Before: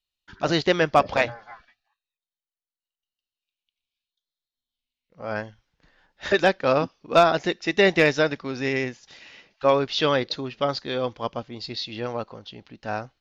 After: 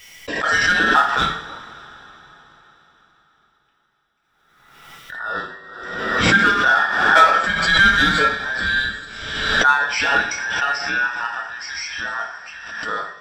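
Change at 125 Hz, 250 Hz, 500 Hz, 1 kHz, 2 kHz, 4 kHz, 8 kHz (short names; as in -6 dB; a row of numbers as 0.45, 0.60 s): +0.5 dB, -0.5 dB, -6.5 dB, +8.0 dB, +13.0 dB, +7.5 dB, n/a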